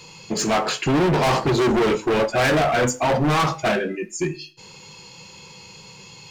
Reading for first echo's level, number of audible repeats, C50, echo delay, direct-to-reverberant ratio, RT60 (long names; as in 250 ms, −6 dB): no echo audible, no echo audible, 18.5 dB, no echo audible, 12.0 dB, 0.40 s